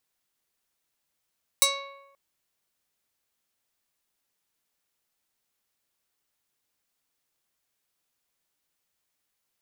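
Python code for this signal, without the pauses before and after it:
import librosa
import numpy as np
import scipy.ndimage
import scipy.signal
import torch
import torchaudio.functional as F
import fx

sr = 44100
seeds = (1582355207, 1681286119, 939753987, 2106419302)

y = fx.pluck(sr, length_s=0.53, note=73, decay_s=1.01, pick=0.34, brightness='medium')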